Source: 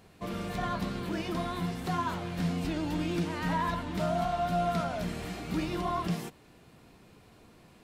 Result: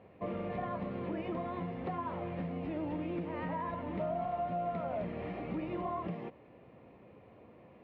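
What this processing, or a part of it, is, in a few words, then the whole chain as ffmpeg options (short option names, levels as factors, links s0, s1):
bass amplifier: -af "acompressor=threshold=0.02:ratio=4,highpass=85,equalizer=f=160:t=q:w=4:g=-4,equalizer=f=540:t=q:w=4:g=9,equalizer=f=1500:t=q:w=4:g=-10,lowpass=f=2300:w=0.5412,lowpass=f=2300:w=1.3066"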